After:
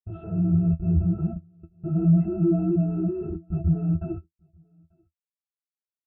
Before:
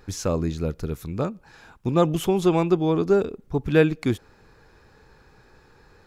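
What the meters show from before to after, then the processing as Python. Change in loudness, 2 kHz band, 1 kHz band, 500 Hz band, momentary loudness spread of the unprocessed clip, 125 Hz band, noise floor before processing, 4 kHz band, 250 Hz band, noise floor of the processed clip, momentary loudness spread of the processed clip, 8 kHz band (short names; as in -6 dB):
-1.0 dB, under -25 dB, under -15 dB, -11.0 dB, 10 LU, +4.0 dB, -56 dBFS, under -40 dB, +1.0 dB, under -85 dBFS, 12 LU, under -40 dB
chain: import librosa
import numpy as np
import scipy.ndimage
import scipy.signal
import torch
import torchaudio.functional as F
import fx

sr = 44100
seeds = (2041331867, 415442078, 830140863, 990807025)

p1 = fx.partial_stretch(x, sr, pct=84)
p2 = fx.env_lowpass_down(p1, sr, base_hz=860.0, full_db=-15.5)
p3 = fx.leveller(p2, sr, passes=2)
p4 = fx.schmitt(p3, sr, flips_db=-36.5)
p5 = fx.air_absorb(p4, sr, metres=370.0)
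p6 = fx.octave_resonator(p5, sr, note='E', decay_s=0.13)
p7 = p6 + fx.echo_single(p6, sr, ms=890, db=-22.0, dry=0)
p8 = fx.spectral_expand(p7, sr, expansion=1.5)
y = p8 * librosa.db_to_amplitude(6.5)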